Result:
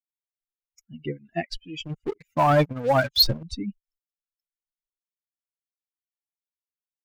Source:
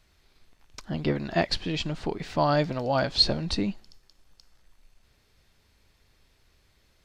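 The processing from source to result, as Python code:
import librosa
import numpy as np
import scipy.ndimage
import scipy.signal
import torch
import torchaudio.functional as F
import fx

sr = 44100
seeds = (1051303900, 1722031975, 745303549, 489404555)

y = fx.bin_expand(x, sr, power=3.0)
y = fx.leveller(y, sr, passes=3, at=(1.85, 3.43))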